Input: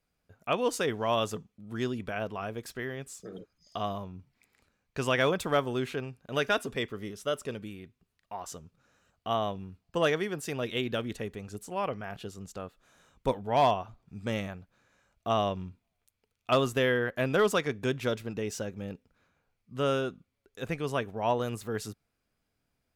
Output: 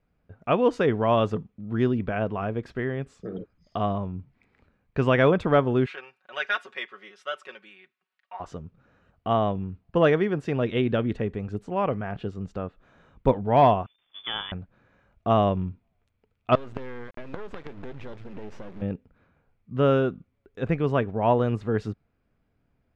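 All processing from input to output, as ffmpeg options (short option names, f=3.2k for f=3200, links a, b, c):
-filter_complex "[0:a]asettb=1/sr,asplit=3[a][b][c];[a]atrim=end=5.864[d];[b]atrim=start=5.86:end=8.4,asetpts=PTS-STARTPTS,afade=t=in:d=0.004:c=qsin,afade=t=out:st=2.536:d=0.004:c=qsin,highpass=1.3k,aecho=1:1:5.4:0.77,atrim=end_sample=112014[e];[c]atrim=start=8.396[f];[d][e]acrossfade=d=0.004:c1=hsin:c2=qsin[g];[g][f]acrossfade=d=0.004:c1=qsin:c2=hsin,asettb=1/sr,asplit=3[h][i][j];[h]atrim=end=13.864[k];[i]atrim=start=13.86:end=14.52,asetpts=PTS-STARTPTS,afade=t=in:d=0.004:c=qsin,afade=t=out:st=0.656:d=0.004:c=qsin,aeval=exprs='val(0)+0.5*0.00596*sgn(val(0))':c=same,agate=range=-22dB:threshold=-42dB:ratio=16:release=100:detection=peak,lowpass=f=3.1k:t=q:w=0.5098,lowpass=f=3.1k:t=q:w=0.6013,lowpass=f=3.1k:t=q:w=0.9,lowpass=f=3.1k:t=q:w=2.563,afreqshift=-3600[l];[j]atrim=start=14.516[m];[k][l]acrossfade=d=0.004:c1=hsin:c2=qsin[n];[n][m]acrossfade=d=0.004:c1=qsin:c2=hsin,asettb=1/sr,asplit=3[o][p][q];[o]atrim=end=16.554[r];[p]atrim=start=16.55:end=18.82,asetpts=PTS-STARTPTS,afade=t=in:d=0.004:c=qsin,afade=t=out:st=2.266:d=0.004:c=qsin,acompressor=threshold=-38dB:ratio=6:attack=3.2:release=140:knee=1:detection=peak,acrusher=bits=6:dc=4:mix=0:aa=0.000001[s];[q]atrim=start=18.816[t];[r][s]acrossfade=d=0.004:c1=hsin:c2=qsin[u];[u][t]acrossfade=d=0.004:c1=qsin:c2=hsin,lowpass=2.4k,lowshelf=f=460:g=7,volume=4dB"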